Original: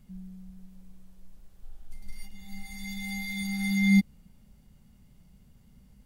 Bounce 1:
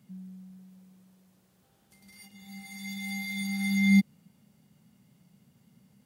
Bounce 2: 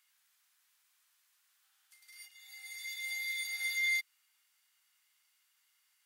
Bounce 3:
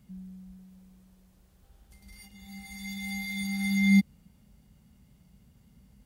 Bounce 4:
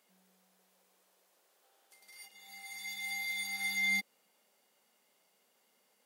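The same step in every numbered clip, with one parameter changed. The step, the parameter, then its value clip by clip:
HPF, cutoff: 120, 1300, 44, 440 Hz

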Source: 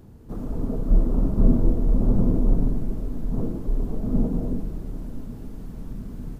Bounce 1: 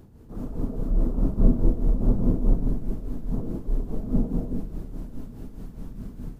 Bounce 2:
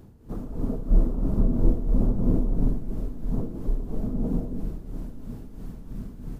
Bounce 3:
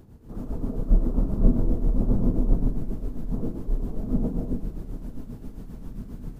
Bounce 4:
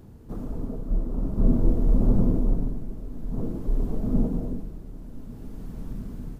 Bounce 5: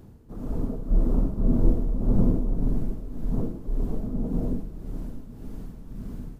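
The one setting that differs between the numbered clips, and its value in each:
tremolo, rate: 4.8, 3, 7.5, 0.51, 1.8 Hz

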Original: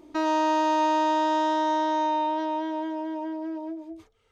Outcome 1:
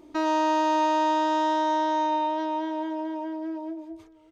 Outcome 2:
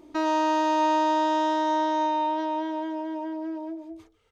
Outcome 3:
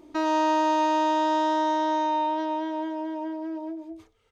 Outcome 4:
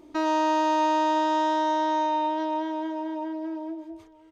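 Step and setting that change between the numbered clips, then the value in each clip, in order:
echo, time: 596, 145, 93, 970 ms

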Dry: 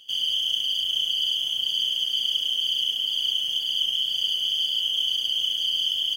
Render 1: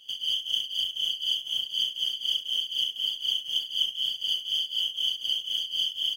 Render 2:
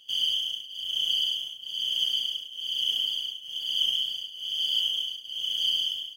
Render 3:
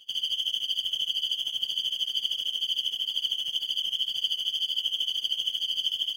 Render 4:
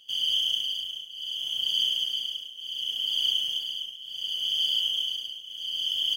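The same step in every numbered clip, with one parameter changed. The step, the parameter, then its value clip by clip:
tremolo, rate: 4, 1.1, 13, 0.69 Hz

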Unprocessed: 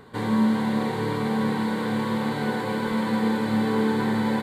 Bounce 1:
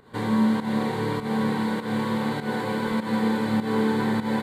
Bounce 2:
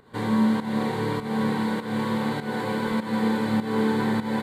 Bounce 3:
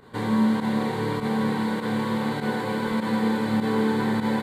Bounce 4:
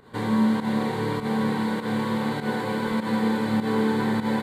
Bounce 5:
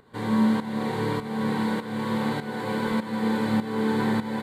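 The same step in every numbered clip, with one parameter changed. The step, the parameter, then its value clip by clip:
pump, release: 178, 267, 61, 114, 535 ms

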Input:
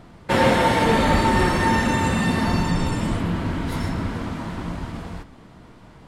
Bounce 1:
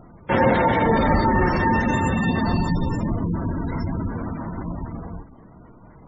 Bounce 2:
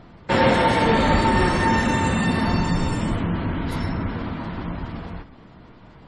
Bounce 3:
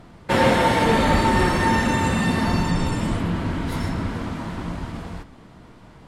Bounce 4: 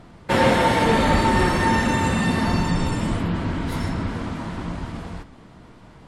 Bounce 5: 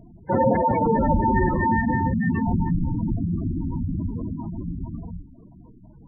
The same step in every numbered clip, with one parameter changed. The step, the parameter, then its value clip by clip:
spectral gate, under each frame's peak: -20, -35, -60, -50, -10 dB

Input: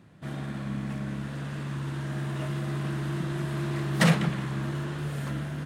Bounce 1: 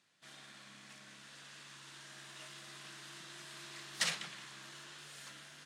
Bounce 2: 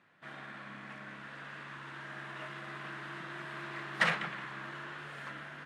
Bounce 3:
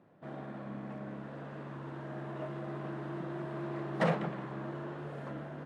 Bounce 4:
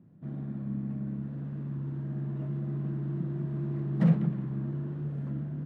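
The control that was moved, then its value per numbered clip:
band-pass, frequency: 5700, 1700, 600, 190 Hz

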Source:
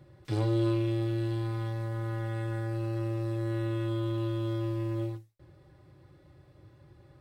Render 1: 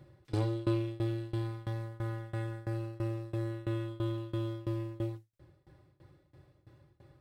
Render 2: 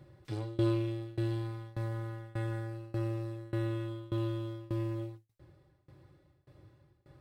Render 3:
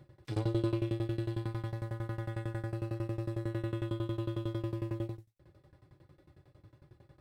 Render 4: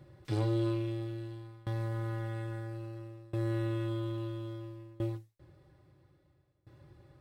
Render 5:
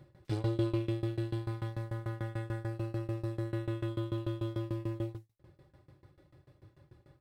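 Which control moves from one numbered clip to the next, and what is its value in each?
tremolo, rate: 3, 1.7, 11, 0.6, 6.8 Hz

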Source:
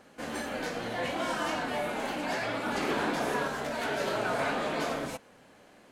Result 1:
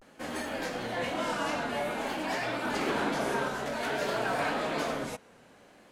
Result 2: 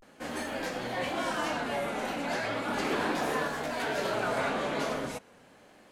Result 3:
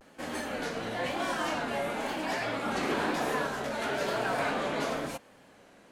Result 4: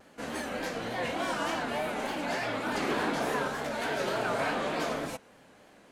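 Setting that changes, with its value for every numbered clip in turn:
vibrato, rate: 0.52, 0.36, 1, 3.4 Hz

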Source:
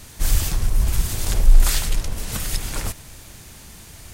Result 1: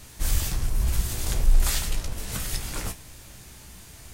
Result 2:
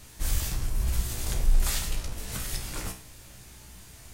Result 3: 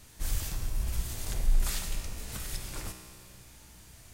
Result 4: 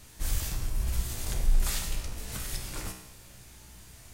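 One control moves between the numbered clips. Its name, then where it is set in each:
resonator, decay: 0.17, 0.4, 2.1, 0.88 s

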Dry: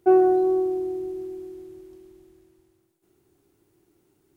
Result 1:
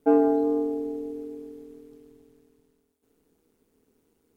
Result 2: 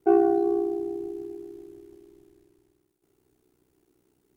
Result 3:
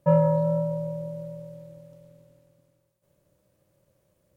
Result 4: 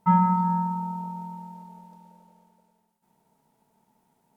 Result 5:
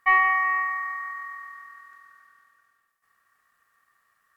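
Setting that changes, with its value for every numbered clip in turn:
ring modulator, frequency: 80, 31, 210, 550, 1500 Hz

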